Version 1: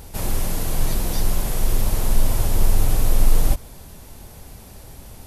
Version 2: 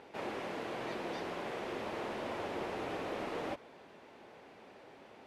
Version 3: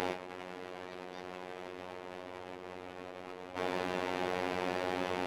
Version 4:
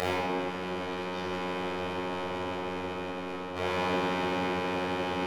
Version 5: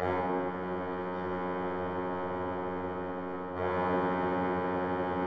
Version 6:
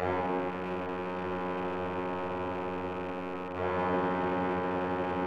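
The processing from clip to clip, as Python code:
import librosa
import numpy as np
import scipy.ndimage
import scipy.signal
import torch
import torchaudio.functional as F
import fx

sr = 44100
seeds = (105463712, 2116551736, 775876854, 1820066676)

y1 = scipy.signal.sosfilt(scipy.signal.cheby1(2, 1.0, [350.0, 2400.0], 'bandpass', fs=sr, output='sos'), x)
y1 = y1 * librosa.db_to_amplitude(-5.0)
y2 = fx.over_compress(y1, sr, threshold_db=-53.0, ratio=-1.0)
y2 = fx.robotise(y2, sr, hz=91.1)
y2 = y2 * librosa.db_to_amplitude(13.5)
y3 = fx.rider(y2, sr, range_db=4, speed_s=2.0)
y3 = fx.room_shoebox(y3, sr, seeds[0], volume_m3=3800.0, walls='mixed', distance_m=6.2)
y4 = scipy.signal.savgol_filter(y3, 41, 4, mode='constant')
y5 = fx.rattle_buzz(y4, sr, strikes_db=-44.0, level_db=-37.0)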